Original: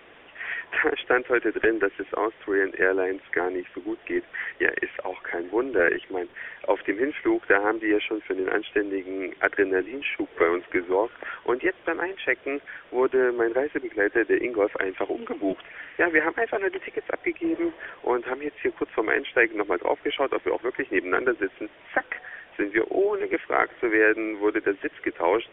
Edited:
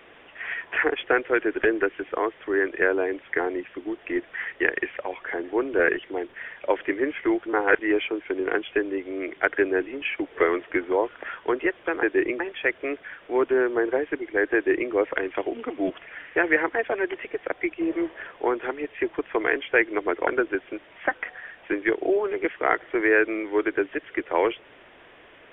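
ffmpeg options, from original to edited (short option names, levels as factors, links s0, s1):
-filter_complex "[0:a]asplit=6[s0][s1][s2][s3][s4][s5];[s0]atrim=end=7.462[s6];[s1]atrim=start=7.458:end=7.792,asetpts=PTS-STARTPTS,areverse[s7];[s2]atrim=start=7.788:end=12.032[s8];[s3]atrim=start=14.178:end=14.552[s9];[s4]atrim=start=12.028:end=19.902[s10];[s5]atrim=start=21.158[s11];[s6][s7]acrossfade=d=0.004:c1=hsin:c2=hsin[s12];[s12][s8]acrossfade=d=0.004:c1=hsin:c2=hsin[s13];[s13][s9]acrossfade=d=0.004:c1=hsin:c2=hsin[s14];[s14][s10]acrossfade=d=0.004:c1=hsin:c2=hsin[s15];[s15][s11]acrossfade=d=0.004:c1=hsin:c2=hsin"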